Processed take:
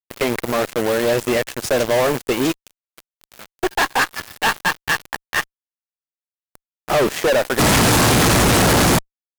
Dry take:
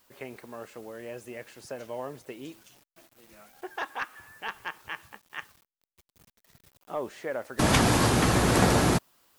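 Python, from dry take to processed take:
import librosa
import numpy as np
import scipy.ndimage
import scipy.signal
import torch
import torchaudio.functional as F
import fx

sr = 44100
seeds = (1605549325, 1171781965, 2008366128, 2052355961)

y = fx.fuzz(x, sr, gain_db=45.0, gate_db=-46.0)
y = fx.transient(y, sr, attack_db=-1, sustain_db=-7, at=(2.47, 4.13))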